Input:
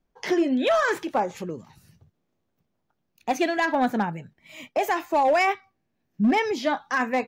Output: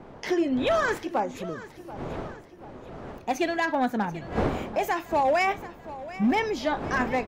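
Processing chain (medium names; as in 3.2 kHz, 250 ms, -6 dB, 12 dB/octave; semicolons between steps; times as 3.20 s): wind noise 580 Hz -35 dBFS; feedback delay 735 ms, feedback 47%, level -16 dB; trim -2.5 dB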